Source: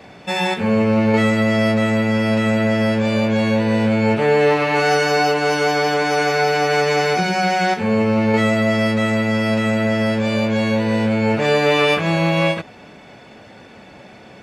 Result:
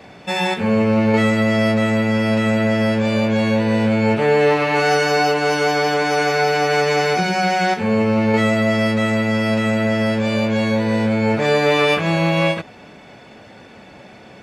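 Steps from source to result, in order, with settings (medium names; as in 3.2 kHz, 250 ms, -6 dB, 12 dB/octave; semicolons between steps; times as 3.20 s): 10.65–11.91 s: band-stop 2.8 kHz, Q 10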